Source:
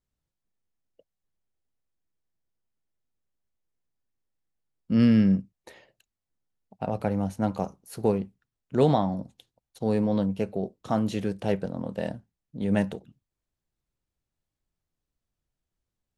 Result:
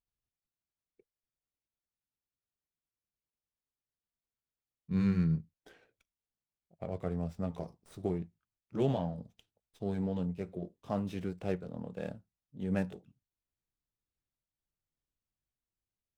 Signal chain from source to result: pitch bend over the whole clip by -4.5 st ending unshifted; sliding maximum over 3 samples; trim -8 dB

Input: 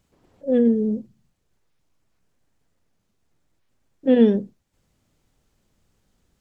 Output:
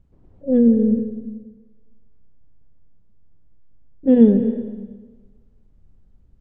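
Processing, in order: tilt EQ -4.5 dB/octave; on a send: reverberation RT60 1.3 s, pre-delay 155 ms, DRR 9.5 dB; on the sum: trim -5 dB

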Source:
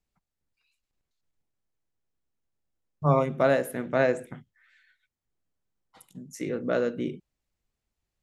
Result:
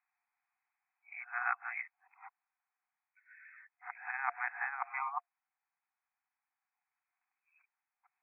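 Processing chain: reverse the whole clip; compressor with a negative ratio -26 dBFS, ratio -0.5; FFT band-pass 710–2600 Hz; trim +3 dB

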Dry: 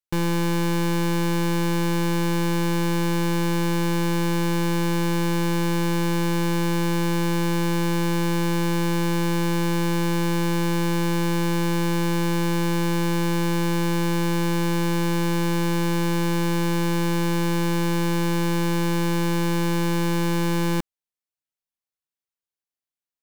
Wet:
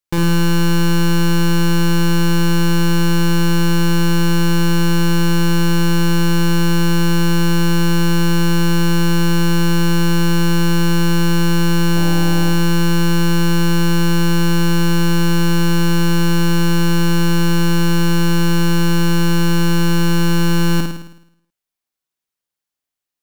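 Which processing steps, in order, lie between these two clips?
11.95–12.49 s: mains buzz 100 Hz, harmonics 9, -36 dBFS -2 dB/octave; flutter echo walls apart 9.2 m, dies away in 0.74 s; trim +5.5 dB

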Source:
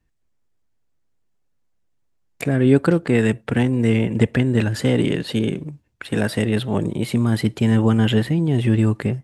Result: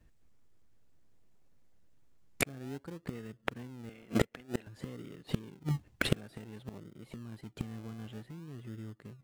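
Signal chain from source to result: 3.89–4.67 s: frequency weighting A; in parallel at -3.5 dB: decimation with a swept rate 37×, swing 60% 0.54 Hz; on the sum: inverted gate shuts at -14 dBFS, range -34 dB; trim +2.5 dB

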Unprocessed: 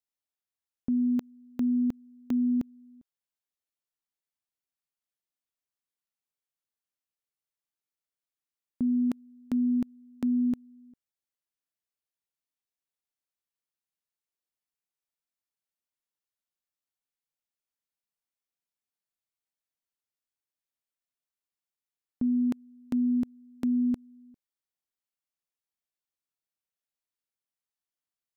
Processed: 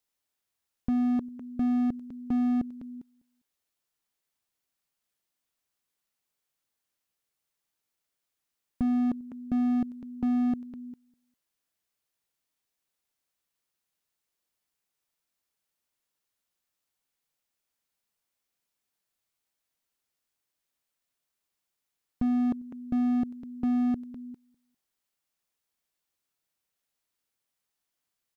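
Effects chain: feedback delay 201 ms, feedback 25%, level -19 dB; slew-rate limiter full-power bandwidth 5.9 Hz; trim +8.5 dB

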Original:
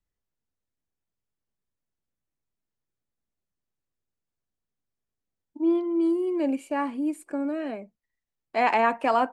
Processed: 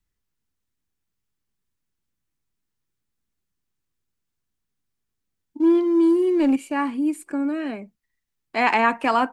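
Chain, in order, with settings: peaking EQ 600 Hz -8.5 dB 0.98 oct; 5.60–6.56 s: waveshaping leveller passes 1; trim +6.5 dB

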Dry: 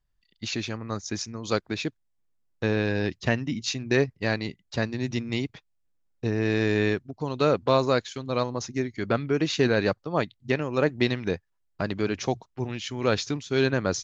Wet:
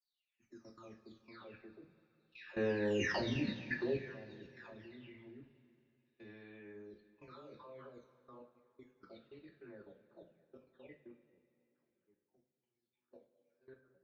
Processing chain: delay that grows with frequency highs early, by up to 804 ms; Doppler pass-by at 3.23 s, 6 m/s, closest 1.4 m; hum notches 60/120/180 Hz; gate -57 dBFS, range -24 dB; low-pass 3.3 kHz 12 dB/octave; band-stop 710 Hz, Q 12; level held to a coarse grid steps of 19 dB; two-slope reverb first 0.3 s, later 2.8 s, from -18 dB, DRR 1 dB; trim +1 dB

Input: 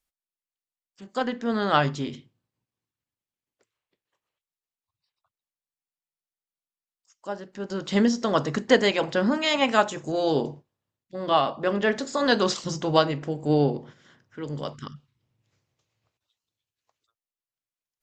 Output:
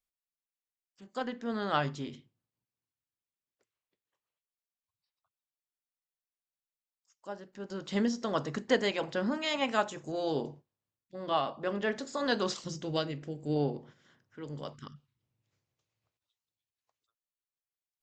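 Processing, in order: 12.68–13.56 s: peaking EQ 950 Hz -10 dB 1.1 oct; trim -8.5 dB

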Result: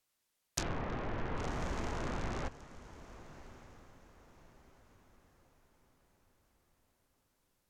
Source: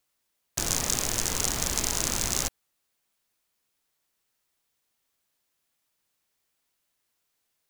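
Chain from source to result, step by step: low-pass that closes with the level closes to 1.6 kHz, closed at -25.5 dBFS; 0.63–1.37 s: low-pass 3.1 kHz 12 dB/octave; echo that smears into a reverb 1165 ms, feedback 40%, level -15.5 dB; trim -3.5 dB

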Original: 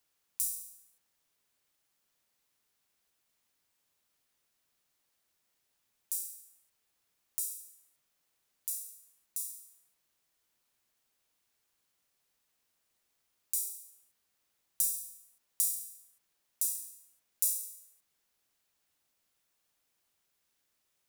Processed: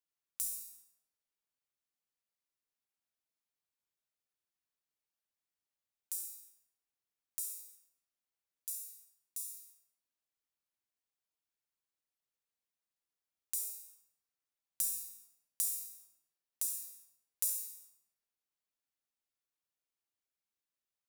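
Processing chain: gate -57 dBFS, range -13 dB; on a send: reverberation RT60 1.0 s, pre-delay 46 ms, DRR 4 dB; on the sum: trim -4.5 dB

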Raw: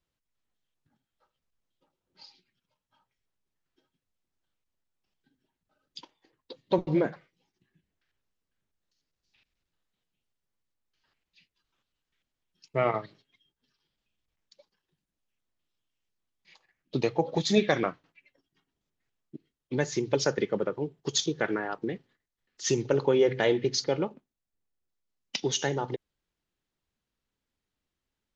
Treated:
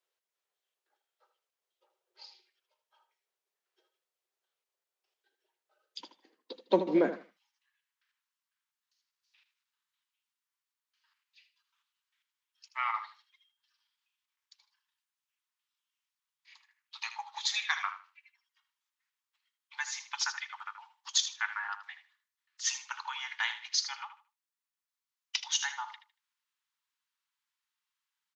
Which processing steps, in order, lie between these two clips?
steep high-pass 370 Hz 72 dB/octave, from 5.99 s 190 Hz, from 7.13 s 890 Hz; feedback delay 78 ms, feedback 21%, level -11.5 dB

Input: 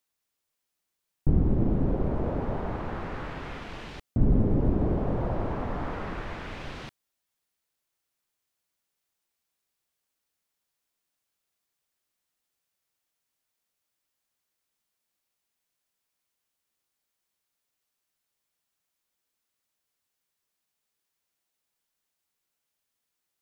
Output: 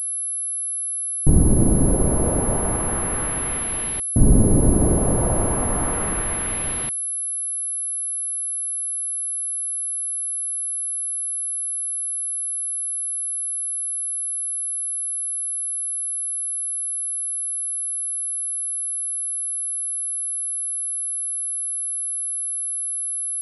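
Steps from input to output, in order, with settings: class-D stage that switches slowly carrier 11 kHz; trim +7.5 dB

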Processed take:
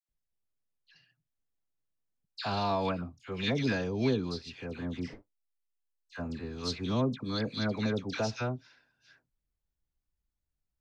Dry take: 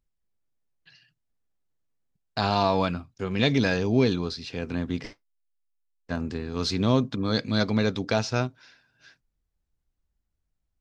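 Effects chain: phase dispersion lows, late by 89 ms, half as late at 1.6 kHz; trim -7 dB

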